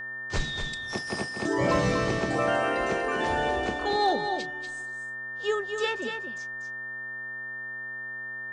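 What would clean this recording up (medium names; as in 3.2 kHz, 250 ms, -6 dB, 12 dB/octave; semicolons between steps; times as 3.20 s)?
clip repair -16 dBFS; de-hum 127.3 Hz, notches 13; band-stop 1.8 kHz, Q 30; inverse comb 241 ms -7 dB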